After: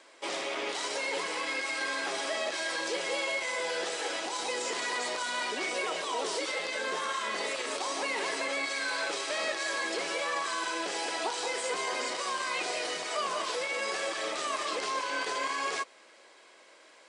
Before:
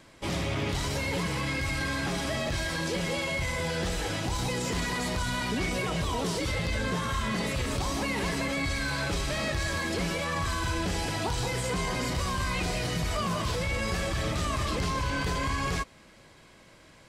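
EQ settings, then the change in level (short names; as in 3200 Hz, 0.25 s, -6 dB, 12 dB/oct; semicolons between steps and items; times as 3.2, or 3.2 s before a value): HPF 380 Hz 24 dB/oct; brick-wall FIR low-pass 10000 Hz; 0.0 dB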